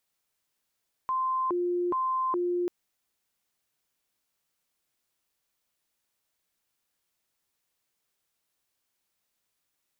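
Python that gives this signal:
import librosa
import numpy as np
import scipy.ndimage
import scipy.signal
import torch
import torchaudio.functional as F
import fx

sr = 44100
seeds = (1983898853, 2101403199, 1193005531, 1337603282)

y = fx.siren(sr, length_s=1.59, kind='hi-lo', low_hz=353.0, high_hz=1040.0, per_s=1.2, wave='sine', level_db=-25.0)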